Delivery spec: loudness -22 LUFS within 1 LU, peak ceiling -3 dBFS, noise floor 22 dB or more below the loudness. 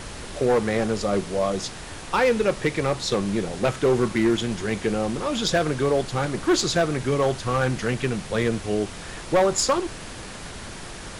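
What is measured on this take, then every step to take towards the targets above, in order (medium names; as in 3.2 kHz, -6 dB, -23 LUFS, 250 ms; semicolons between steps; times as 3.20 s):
clipped samples 1.4%; clipping level -14.0 dBFS; noise floor -37 dBFS; noise floor target -46 dBFS; loudness -23.5 LUFS; peak level -14.0 dBFS; loudness target -22.0 LUFS
-> clip repair -14 dBFS; noise print and reduce 9 dB; trim +1.5 dB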